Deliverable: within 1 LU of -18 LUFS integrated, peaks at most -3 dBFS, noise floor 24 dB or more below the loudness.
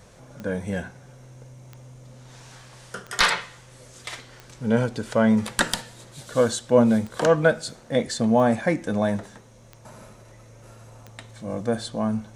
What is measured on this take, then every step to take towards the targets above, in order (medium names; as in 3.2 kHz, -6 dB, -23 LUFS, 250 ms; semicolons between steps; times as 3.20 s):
clicks found 9; loudness -23.5 LUFS; peak level -5.0 dBFS; loudness target -18.0 LUFS
-> de-click; trim +5.5 dB; peak limiter -3 dBFS